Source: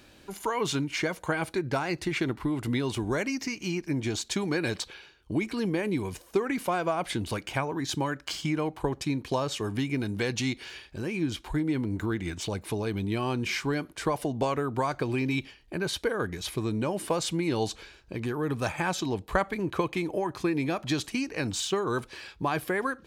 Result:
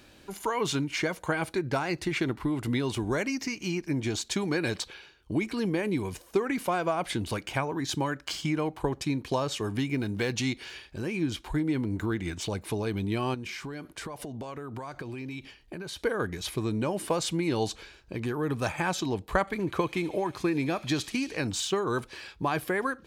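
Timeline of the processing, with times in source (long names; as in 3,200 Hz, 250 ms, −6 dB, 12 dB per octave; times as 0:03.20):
0:09.90–0:10.34: running median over 5 samples
0:13.34–0:16.00: downward compressor 12 to 1, threshold −34 dBFS
0:19.40–0:21.37: delay with a high-pass on its return 73 ms, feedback 80%, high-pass 3,100 Hz, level −13 dB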